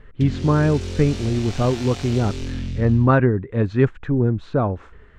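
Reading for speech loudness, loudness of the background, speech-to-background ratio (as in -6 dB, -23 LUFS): -20.5 LUFS, -31.0 LUFS, 10.5 dB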